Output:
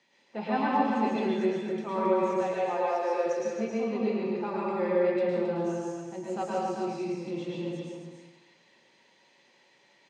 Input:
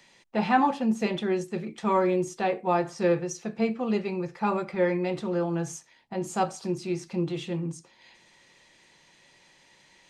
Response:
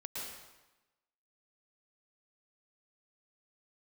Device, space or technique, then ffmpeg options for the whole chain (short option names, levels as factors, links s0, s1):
supermarket ceiling speaker: -filter_complex "[0:a]asettb=1/sr,asplit=3[s0][s1][s2];[s0]atrim=end=2.284[s3];[s1]atrim=start=2.28:end=3.26,asetpts=PTS-STARTPTS,afade=t=in:d=0.004:c=qsin,afade=t=out:st=0.976:d=0.004:c=qsin,highpass=f=430:w=0.5412,highpass=f=430:w=1.3066[s4];[s2]atrim=start=3.256[s5];[s3][s4]acrossfade=d=0.004:c1=hsin:c2=qsin[s6];[s6][s5]acrossfade=d=0.004:c1=qsin:c2=hsin,highpass=290,lowpass=5800,lowshelf=f=340:g=10[s7];[1:a]atrim=start_sample=2205[s8];[s7][s8]afir=irnorm=-1:irlink=0,aecho=1:1:269:0.531,volume=0.562"